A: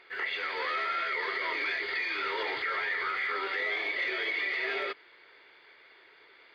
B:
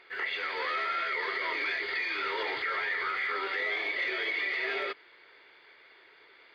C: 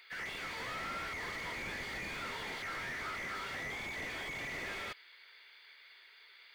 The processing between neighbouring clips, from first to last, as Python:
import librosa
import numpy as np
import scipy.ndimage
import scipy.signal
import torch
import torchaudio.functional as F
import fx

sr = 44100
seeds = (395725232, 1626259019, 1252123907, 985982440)

y1 = x
y2 = np.diff(y1, prepend=0.0)
y2 = fx.slew_limit(y2, sr, full_power_hz=7.0)
y2 = F.gain(torch.from_numpy(y2), 9.0).numpy()